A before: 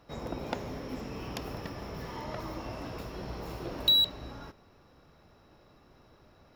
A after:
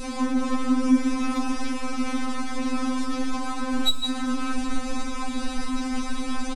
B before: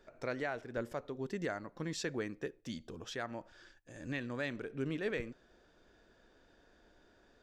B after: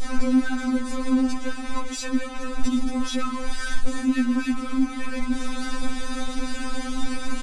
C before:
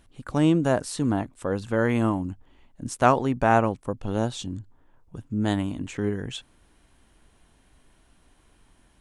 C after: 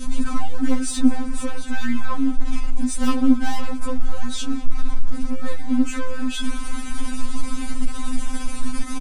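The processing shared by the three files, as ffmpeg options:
-filter_complex "[0:a]aeval=exprs='val(0)+0.5*0.0299*sgn(val(0))':c=same,adynamicequalizer=threshold=0.01:dfrequency=1400:dqfactor=1:tfrequency=1400:tqfactor=1:attack=5:release=100:ratio=0.375:range=2:mode=boostabove:tftype=bell,acrossover=split=2300[a][b];[a]acontrast=71[c];[c][b]amix=inputs=2:normalize=0,aresample=22050,aresample=44100,acompressor=threshold=-27dB:ratio=1.5,aecho=1:1:4.7:0.32,asoftclip=type=hard:threshold=-16.5dB,bandreject=f=490:w=12,aeval=exprs='0.2*(cos(1*acos(clip(val(0)/0.2,-1,1)))-cos(1*PI/2))+0.0398*(cos(2*acos(clip(val(0)/0.2,-1,1)))-cos(2*PI/2))+0.0158*(cos(5*acos(clip(val(0)/0.2,-1,1)))-cos(5*PI/2))':c=same,bass=f=250:g=13,treble=f=4k:g=7,asplit=2[d][e];[e]aecho=0:1:198|396|594:0.0841|0.0353|0.0148[f];[d][f]amix=inputs=2:normalize=0,afftfilt=real='re*3.46*eq(mod(b,12),0)':imag='im*3.46*eq(mod(b,12),0)':win_size=2048:overlap=0.75,volume=-3dB"

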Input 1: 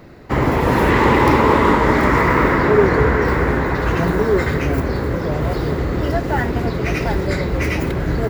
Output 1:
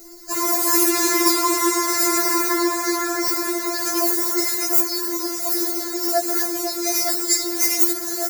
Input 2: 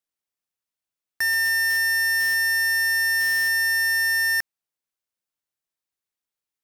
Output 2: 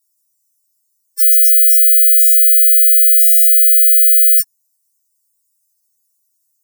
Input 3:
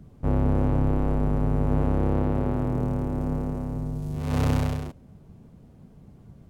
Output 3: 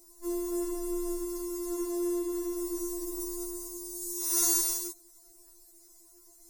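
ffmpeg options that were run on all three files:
-af "aexciter=amount=11.8:drive=9.7:freq=4.9k,afftfilt=real='re*4*eq(mod(b,16),0)':imag='im*4*eq(mod(b,16),0)':win_size=2048:overlap=0.75,volume=-4.5dB"

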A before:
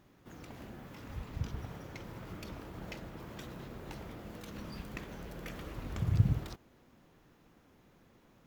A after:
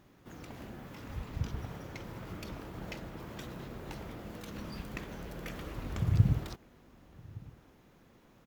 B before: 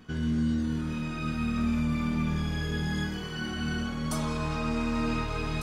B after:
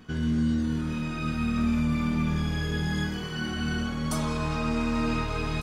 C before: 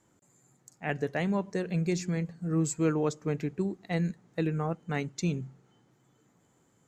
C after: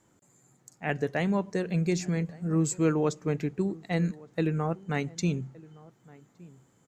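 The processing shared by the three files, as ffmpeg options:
-filter_complex "[0:a]asplit=2[a][b];[b]adelay=1166,volume=-22dB,highshelf=f=4k:g=-26.2[c];[a][c]amix=inputs=2:normalize=0,volume=2dB"

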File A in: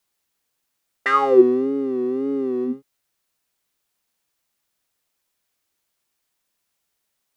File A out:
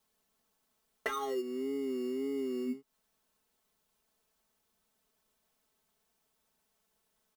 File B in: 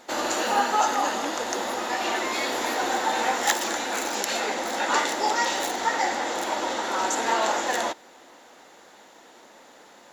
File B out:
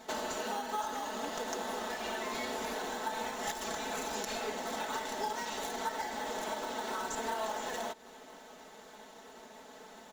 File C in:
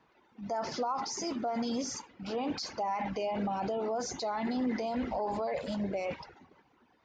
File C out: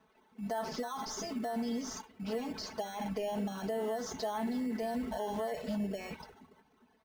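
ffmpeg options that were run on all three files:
-filter_complex "[0:a]equalizer=f=93:t=o:w=0.3:g=8.5,asplit=2[a][b];[b]acrusher=samples=18:mix=1:aa=0.000001,volume=-5.5dB[c];[a][c]amix=inputs=2:normalize=0,acompressor=threshold=-30dB:ratio=8,aecho=1:1:4.6:0.85,volume=-6dB"

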